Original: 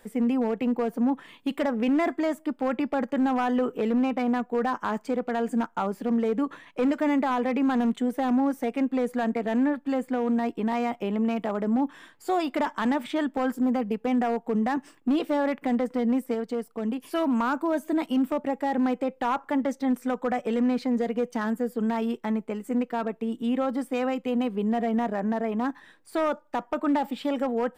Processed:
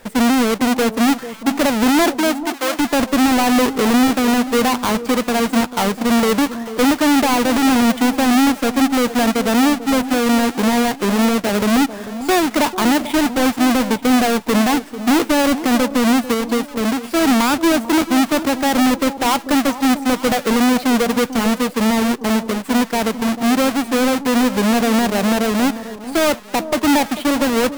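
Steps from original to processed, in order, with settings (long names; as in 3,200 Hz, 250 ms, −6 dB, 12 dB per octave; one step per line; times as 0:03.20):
each half-wave held at its own peak
0:02.03–0:02.78: high-pass filter 210 Hz → 640 Hz 12 dB per octave
on a send: delay that swaps between a low-pass and a high-pass 443 ms, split 980 Hz, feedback 57%, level −12 dB
on the sum: level +6.5 dB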